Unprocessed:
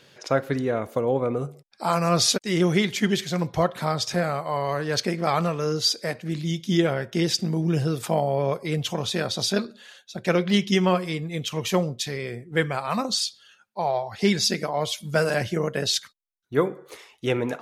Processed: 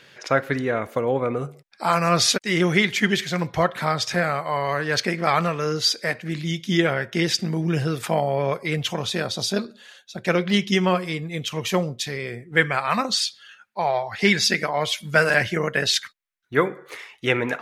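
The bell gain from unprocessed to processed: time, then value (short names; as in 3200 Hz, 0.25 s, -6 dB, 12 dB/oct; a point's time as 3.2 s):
bell 1900 Hz 1.4 oct
8.83 s +8.5 dB
9.49 s -2 dB
10.23 s +4 dB
12.26 s +4 dB
12.78 s +11.5 dB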